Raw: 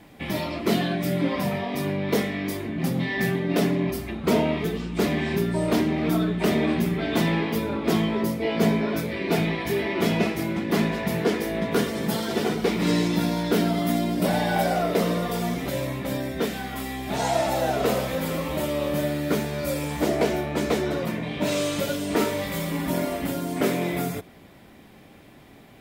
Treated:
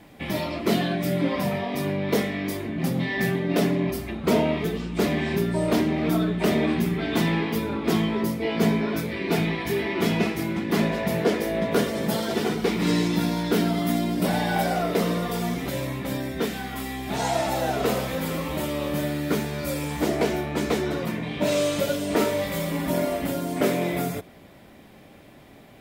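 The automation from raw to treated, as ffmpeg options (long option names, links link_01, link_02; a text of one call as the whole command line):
ffmpeg -i in.wav -af "asetnsamples=nb_out_samples=441:pad=0,asendcmd='6.67 equalizer g -5;10.79 equalizer g 6.5;12.34 equalizer g -4;21.41 equalizer g 4',equalizer=frequency=590:width_type=o:width=0.35:gain=1.5" out.wav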